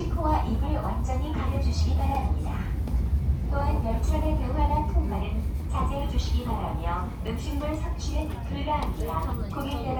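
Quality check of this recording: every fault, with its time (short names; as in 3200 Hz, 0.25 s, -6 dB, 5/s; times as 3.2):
7.27 gap 4.8 ms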